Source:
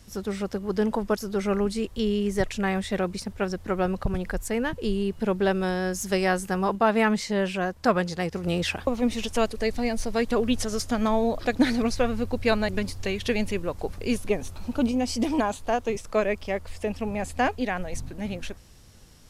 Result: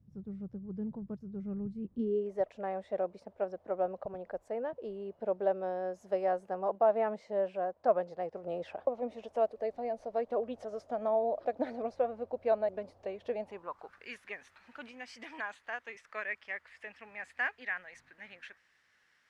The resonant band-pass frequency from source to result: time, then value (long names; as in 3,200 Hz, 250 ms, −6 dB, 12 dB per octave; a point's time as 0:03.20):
resonant band-pass, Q 3.9
0:01.77 140 Hz
0:02.31 620 Hz
0:13.35 620 Hz
0:14.07 1,800 Hz